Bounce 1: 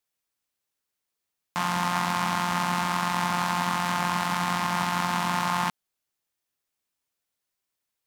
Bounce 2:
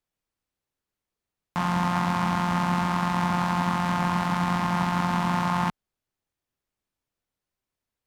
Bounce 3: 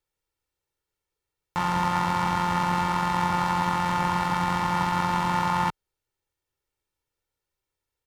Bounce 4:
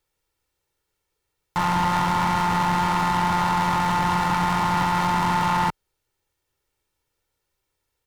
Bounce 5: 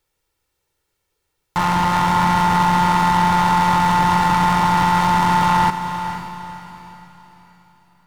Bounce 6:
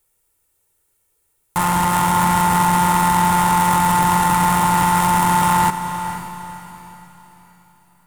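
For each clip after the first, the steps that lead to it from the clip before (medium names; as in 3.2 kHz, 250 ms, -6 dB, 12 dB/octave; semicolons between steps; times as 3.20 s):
tilt EQ -2.5 dB/octave
comb 2.2 ms, depth 63%
saturation -24 dBFS, distortion -10 dB; trim +7.5 dB
echo that smears into a reverb 497 ms, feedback 40%, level -9.5 dB; trim +4 dB
tracing distortion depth 0.067 ms; resonant high shelf 6.7 kHz +10.5 dB, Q 1.5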